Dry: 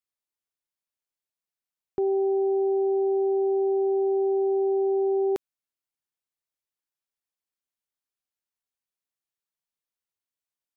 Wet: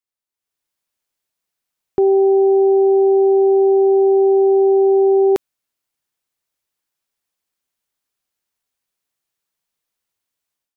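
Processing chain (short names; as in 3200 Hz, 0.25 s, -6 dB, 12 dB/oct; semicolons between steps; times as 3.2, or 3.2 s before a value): AGC gain up to 11 dB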